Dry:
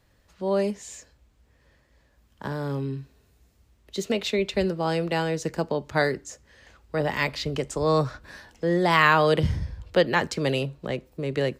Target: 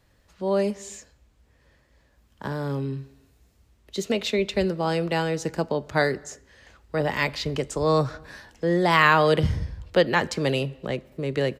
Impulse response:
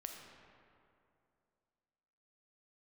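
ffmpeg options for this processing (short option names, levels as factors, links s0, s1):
-filter_complex "[0:a]asplit=2[s0][s1];[1:a]atrim=start_sample=2205,afade=t=out:st=0.39:d=0.01,atrim=end_sample=17640[s2];[s1][s2]afir=irnorm=-1:irlink=0,volume=0.188[s3];[s0][s3]amix=inputs=2:normalize=0,aresample=32000,aresample=44100"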